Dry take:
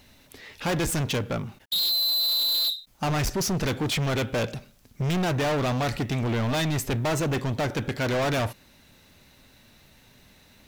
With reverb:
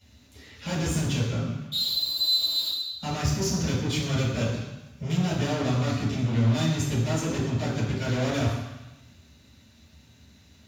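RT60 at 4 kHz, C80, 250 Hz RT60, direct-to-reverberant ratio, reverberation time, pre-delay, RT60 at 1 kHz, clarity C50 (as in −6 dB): 1.1 s, 4.0 dB, 1.0 s, −13.5 dB, 1.0 s, 3 ms, 1.1 s, 1.5 dB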